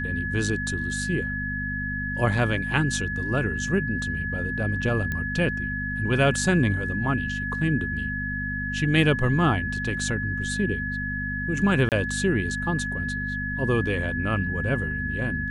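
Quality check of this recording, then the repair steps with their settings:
hum 50 Hz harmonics 5 -32 dBFS
whine 1.7 kHz -29 dBFS
5.12 s: pop -16 dBFS
11.89–11.92 s: dropout 28 ms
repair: de-click; de-hum 50 Hz, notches 5; band-stop 1.7 kHz, Q 30; interpolate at 11.89 s, 28 ms

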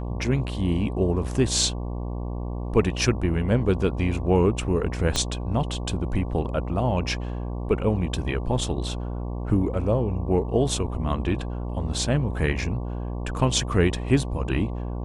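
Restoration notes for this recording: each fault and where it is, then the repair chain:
buzz 60 Hz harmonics 19 -30 dBFS
5.16 s: pop -9 dBFS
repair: de-click; de-hum 60 Hz, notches 19

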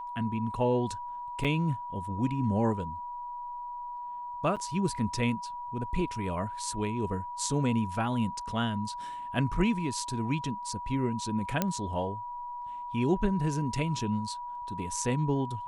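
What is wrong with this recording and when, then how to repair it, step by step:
whine 970 Hz -36 dBFS
1.44–1.45 s: dropout 6.6 ms
4.56–4.57 s: dropout 6.8 ms
11.62 s: pop -11 dBFS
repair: de-click; band-stop 970 Hz, Q 30; interpolate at 1.44 s, 6.6 ms; interpolate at 4.56 s, 6.8 ms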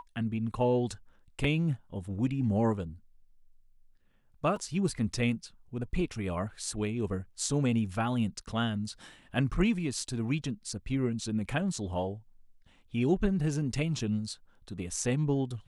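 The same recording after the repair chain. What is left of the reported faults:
nothing left

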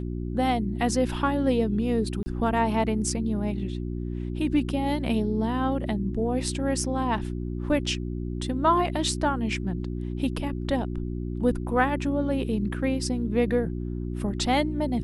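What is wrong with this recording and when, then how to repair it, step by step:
hum 60 Hz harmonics 6 -31 dBFS
2.23–2.26 s: dropout 30 ms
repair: de-hum 60 Hz, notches 6; interpolate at 2.23 s, 30 ms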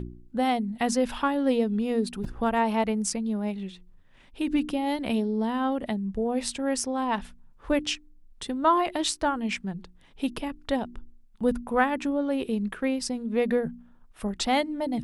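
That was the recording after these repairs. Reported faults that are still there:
nothing left

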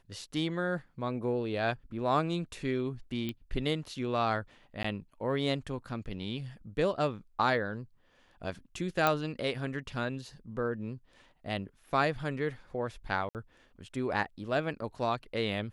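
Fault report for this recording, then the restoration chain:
3.29 s: pop -22 dBFS
4.83–4.84 s: dropout 14 ms
9.07 s: pop -12 dBFS
13.29–13.35 s: dropout 58 ms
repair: de-click; interpolate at 4.83 s, 14 ms; interpolate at 13.29 s, 58 ms

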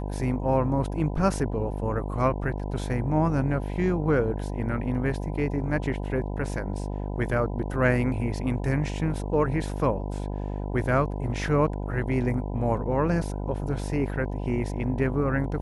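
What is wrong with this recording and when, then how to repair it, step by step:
buzz 50 Hz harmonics 20 -31 dBFS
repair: de-hum 50 Hz, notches 20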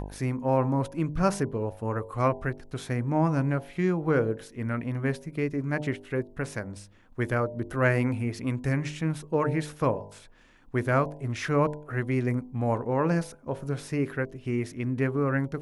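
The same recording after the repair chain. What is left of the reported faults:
nothing left

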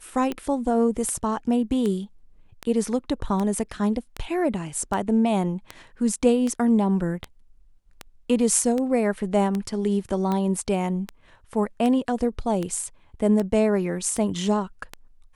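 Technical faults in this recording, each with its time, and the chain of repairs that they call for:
tick 78 rpm -15 dBFS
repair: de-click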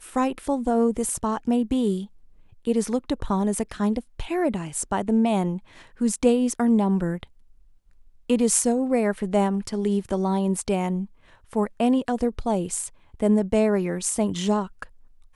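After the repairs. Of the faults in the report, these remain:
nothing left

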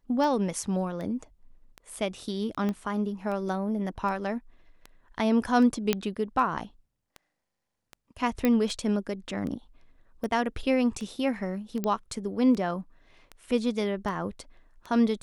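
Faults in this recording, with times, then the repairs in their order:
tick 78 rpm
2.69 s: pop -19 dBFS
5.93 s: pop -9 dBFS
8.45 s: pop -12 dBFS
11.84 s: pop -16 dBFS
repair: de-click

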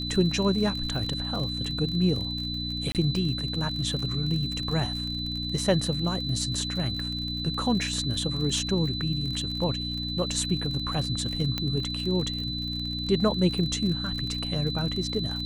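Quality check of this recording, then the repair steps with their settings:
crackle 47 per s -32 dBFS
hum 60 Hz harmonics 5 -34 dBFS
whine 4 kHz -32 dBFS
2.92–2.95 s: dropout 28 ms
11.58 s: pop -14 dBFS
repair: de-click; de-hum 60 Hz, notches 5; band-stop 4 kHz, Q 30; interpolate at 2.92 s, 28 ms

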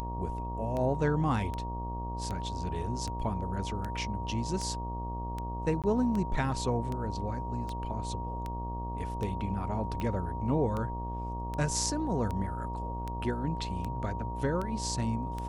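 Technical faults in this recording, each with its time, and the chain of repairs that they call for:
buzz 60 Hz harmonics 19 -37 dBFS
tick 78 rpm -23 dBFS
whine 940 Hz -38 dBFS
5.82–5.84 s: dropout 17 ms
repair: de-click; band-stop 940 Hz, Q 30; de-hum 60 Hz, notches 19; interpolate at 5.82 s, 17 ms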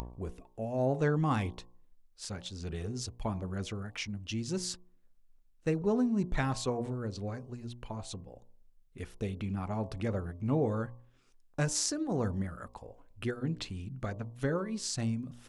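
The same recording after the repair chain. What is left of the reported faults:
nothing left

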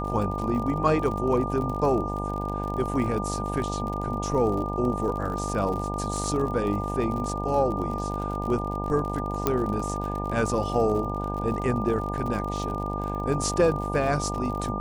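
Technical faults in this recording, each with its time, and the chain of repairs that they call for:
buzz 50 Hz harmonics 19 -31 dBFS
crackle 48 per s -32 dBFS
whine 1.2 kHz -32 dBFS
9.47 s: pop -8 dBFS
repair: de-click; band-stop 1.2 kHz, Q 30; de-hum 50 Hz, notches 19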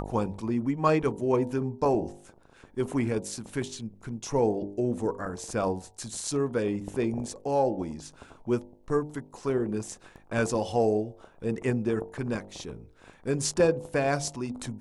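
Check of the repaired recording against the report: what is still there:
9.47 s: pop

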